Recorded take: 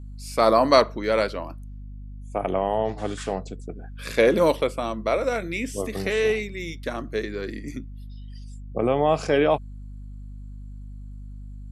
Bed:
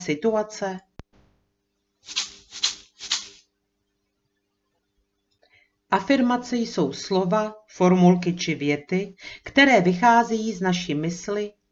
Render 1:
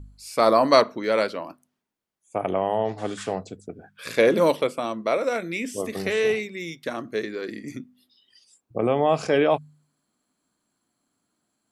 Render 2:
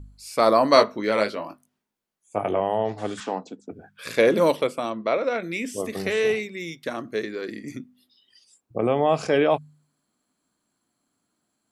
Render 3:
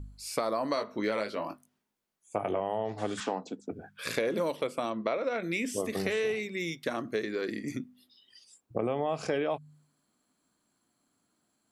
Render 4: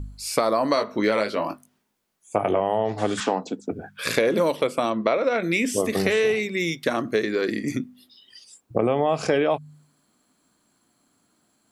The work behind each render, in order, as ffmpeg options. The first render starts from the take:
ffmpeg -i in.wav -af "bandreject=frequency=50:width_type=h:width=4,bandreject=frequency=100:width_type=h:width=4,bandreject=frequency=150:width_type=h:width=4,bandreject=frequency=200:width_type=h:width=4,bandreject=frequency=250:width_type=h:width=4" out.wav
ffmpeg -i in.wav -filter_complex "[0:a]asettb=1/sr,asplit=3[link_01][link_02][link_03];[link_01]atrim=end=0.744[link_04];[link_02]atrim=start=0.74:end=2.6,asetpts=PTS-STARTPTS,afade=type=in:duration=0.004:curve=qsin,afade=type=out:start_time=1.856:duration=0.004:curve=qsin,asplit=2[link_05][link_06];[link_06]adelay=19,volume=-6dB[link_07];[link_05][link_07]amix=inputs=2:normalize=0,atrim=end_sample=82026[link_08];[link_03]atrim=start=2.596[link_09];[link_04][link_08]acrossfade=duration=0.004:curve1=hsin:curve2=qsin[link_10];[link_10][link_09]acrossfade=duration=0.004:curve1=qsin:curve2=hsin,asettb=1/sr,asplit=3[link_11][link_12][link_13];[link_11]atrim=end=3.204[link_14];[link_12]atrim=start=3.2:end=3.71,asetpts=PTS-STARTPTS,afade=type=in:duration=0.004:curve=qsin,afade=type=out:start_time=0.506:duration=0.004:curve=qsin,highpass=frequency=200:width=0.5412,highpass=frequency=200:width=1.3066,equalizer=frequency=270:width_type=q:width=4:gain=5,equalizer=frequency=400:width_type=q:width=4:gain=-4,equalizer=frequency=630:width_type=q:width=4:gain=-4,equalizer=frequency=910:width_type=q:width=4:gain=8,equalizer=frequency=2100:width_type=q:width=4:gain=-4,equalizer=frequency=4600:width_type=q:width=4:gain=-3,lowpass=frequency=6600:width=0.5412,lowpass=frequency=6600:width=1.3066[link_15];[link_13]atrim=start=3.706[link_16];[link_14][link_15]acrossfade=duration=0.004:curve1=hsin:curve2=qsin[link_17];[link_17][link_16]acrossfade=duration=0.004:curve1=qsin:curve2=hsin,asplit=3[link_18][link_19][link_20];[link_18]afade=type=out:start_time=4.89:duration=0.02[link_21];[link_19]lowpass=frequency=4700:width=0.5412,lowpass=frequency=4700:width=1.3066,afade=type=in:start_time=4.89:duration=0.02,afade=type=out:start_time=5.42:duration=0.02[link_22];[link_20]afade=type=in:start_time=5.42:duration=0.02[link_23];[link_21][link_22][link_23]amix=inputs=3:normalize=0" out.wav
ffmpeg -i in.wav -af "alimiter=limit=-10dB:level=0:latency=1:release=262,acompressor=threshold=-27dB:ratio=6" out.wav
ffmpeg -i in.wav -af "volume=9dB" out.wav

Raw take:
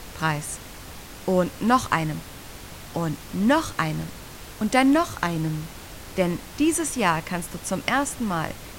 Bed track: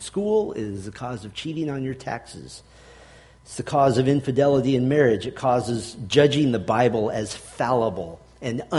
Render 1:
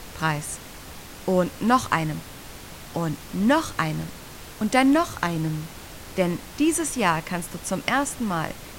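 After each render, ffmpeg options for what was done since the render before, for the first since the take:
ffmpeg -i in.wav -af "bandreject=frequency=50:width_type=h:width=4,bandreject=frequency=100:width_type=h:width=4" out.wav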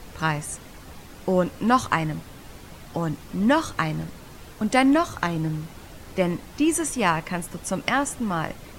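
ffmpeg -i in.wav -af "afftdn=noise_reduction=7:noise_floor=-42" out.wav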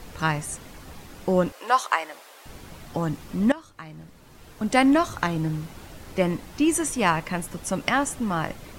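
ffmpeg -i in.wav -filter_complex "[0:a]asettb=1/sr,asplit=3[link_01][link_02][link_03];[link_01]atrim=end=1.524[link_04];[link_02]atrim=start=1.52:end=2.46,asetpts=PTS-STARTPTS,afade=type=in:duration=0.004:curve=qsin,afade=type=out:start_time=0.936:duration=0.004:curve=qsin,highpass=frequency=490:width=0.5412,highpass=frequency=490:width=1.3066[link_05];[link_03]atrim=start=2.456[link_06];[link_04][link_05]acrossfade=duration=0.004:curve1=hsin:curve2=qsin[link_07];[link_07][link_06]acrossfade=duration=0.004:curve1=qsin:curve2=hsin,asplit=2[link_08][link_09];[link_08]atrim=end=3.52,asetpts=PTS-STARTPTS,afade=type=out:start_time=3.516:duration=0.004:curve=hsin:silence=0.105925[link_10];[link_09]atrim=start=3.52,asetpts=PTS-STARTPTS,afade=type=in:duration=1.27:curve=qua:silence=0.105925[link_11];[link_10][link_11]concat=n=2:v=0:a=1" out.wav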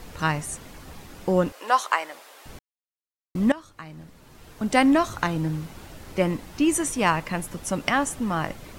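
ffmpeg -i in.wav -filter_complex "[0:a]asplit=3[link_01][link_02][link_03];[link_01]atrim=end=2.59,asetpts=PTS-STARTPTS,afade=type=out:start_time=2.586:duration=0.004:curve=hsin[link_04];[link_02]atrim=start=2.59:end=3.35,asetpts=PTS-STARTPTS,volume=0[link_05];[link_03]atrim=start=3.35,asetpts=PTS-STARTPTS,afade=type=in:duration=0.004:curve=hsin[link_06];[link_04][link_05][link_06]concat=n=3:v=0:a=1" out.wav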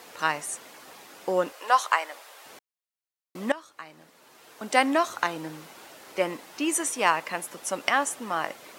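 ffmpeg -i in.wav -af "highpass=450" out.wav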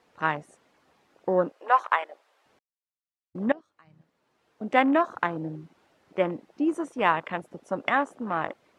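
ffmpeg -i in.wav -af "aemphasis=mode=reproduction:type=bsi,afwtdn=0.02" out.wav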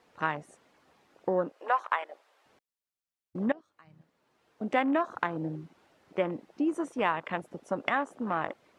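ffmpeg -i in.wav -af "acompressor=threshold=-27dB:ratio=2" out.wav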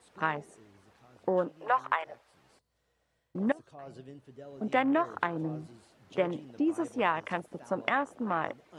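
ffmpeg -i in.wav -i bed.wav -filter_complex "[1:a]volume=-29dB[link_01];[0:a][link_01]amix=inputs=2:normalize=0" out.wav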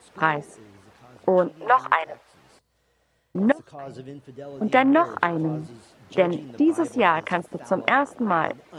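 ffmpeg -i in.wav -af "volume=9dB,alimiter=limit=-1dB:level=0:latency=1" out.wav

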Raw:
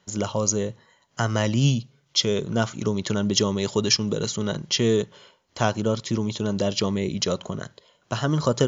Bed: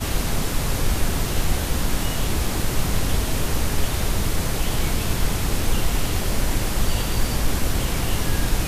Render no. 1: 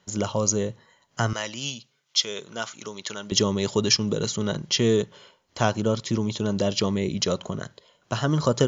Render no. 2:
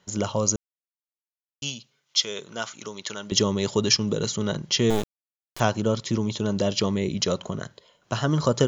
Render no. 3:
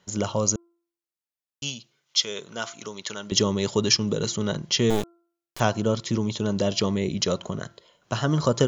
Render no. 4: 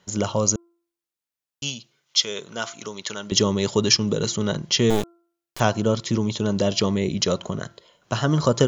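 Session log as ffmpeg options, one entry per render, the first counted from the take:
ffmpeg -i in.wav -filter_complex "[0:a]asettb=1/sr,asplit=3[link_01][link_02][link_03];[link_01]atrim=end=1.334[link_04];[link_02]atrim=start=1.33:end=3.32,asetpts=PTS-STARTPTS,afade=type=in:duration=0.004:curve=qsin,afade=type=out:start_time=1.986:duration=0.004:curve=qsin,highpass=frequency=1400:poles=1[link_05];[link_03]atrim=start=3.316[link_06];[link_04][link_05]acrossfade=duration=0.004:curve1=hsin:curve2=qsin[link_07];[link_07][link_06]acrossfade=duration=0.004:curve1=qsin:curve2=hsin" out.wav
ffmpeg -i in.wav -filter_complex "[0:a]asettb=1/sr,asplit=3[link_01][link_02][link_03];[link_01]atrim=end=4.904[link_04];[link_02]atrim=start=4.9:end=5.6,asetpts=PTS-STARTPTS,afade=type=in:duration=0.004:curve=qsin,afade=type=out:start_time=0.696:duration=0.004:curve=qsin,acrusher=bits=3:dc=4:mix=0:aa=0.000001[link_05];[link_03]atrim=start=5.596[link_06];[link_04][link_05]acrossfade=duration=0.004:curve1=hsin:curve2=qsin[link_07];[link_07][link_06]acrossfade=duration=0.004:curve1=qsin:curve2=hsin,asplit=3[link_08][link_09][link_10];[link_08]atrim=end=0.56,asetpts=PTS-STARTPTS,afade=type=out:start_time=0.556:duration=0.004:curve=hsin[link_11];[link_09]atrim=start=0.56:end=1.62,asetpts=PTS-STARTPTS,volume=0[link_12];[link_10]atrim=start=1.62,asetpts=PTS-STARTPTS,afade=type=in:duration=0.004:curve=hsin[link_13];[link_11][link_12][link_13]concat=n=3:v=0:a=1" out.wav
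ffmpeg -i in.wav -af "bandreject=frequency=341.6:width_type=h:width=4,bandreject=frequency=683.2:width_type=h:width=4,bandreject=frequency=1024.8:width_type=h:width=4,bandreject=frequency=1366.4:width_type=h:width=4" out.wav
ffmpeg -i in.wav -af "volume=2.5dB,alimiter=limit=-3dB:level=0:latency=1" out.wav

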